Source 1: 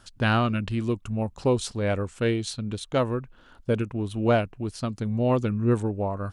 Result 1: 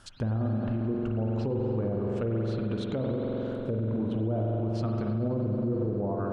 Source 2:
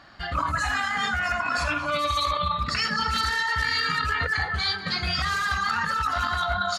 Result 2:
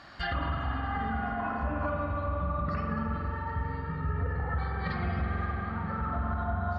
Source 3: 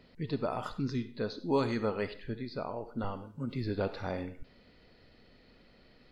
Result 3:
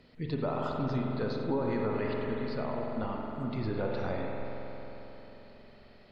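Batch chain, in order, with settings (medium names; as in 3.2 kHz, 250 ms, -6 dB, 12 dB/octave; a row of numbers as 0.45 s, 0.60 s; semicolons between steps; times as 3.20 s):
low-pass that closes with the level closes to 430 Hz, closed at -21.5 dBFS; spring tank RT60 4 s, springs 45 ms, chirp 65 ms, DRR -0.5 dB; peak limiter -22 dBFS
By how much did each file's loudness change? -3.5 LU, -8.0 LU, +1.5 LU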